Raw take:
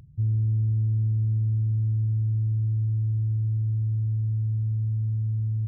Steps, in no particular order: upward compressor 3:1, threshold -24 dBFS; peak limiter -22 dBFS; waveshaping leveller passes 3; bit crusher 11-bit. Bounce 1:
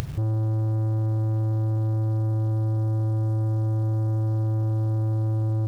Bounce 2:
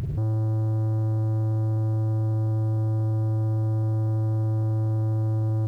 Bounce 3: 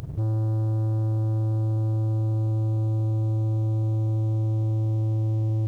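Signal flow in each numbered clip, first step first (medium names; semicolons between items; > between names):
peak limiter > bit crusher > waveshaping leveller > upward compressor; upward compressor > peak limiter > waveshaping leveller > bit crusher; waveshaping leveller > upward compressor > peak limiter > bit crusher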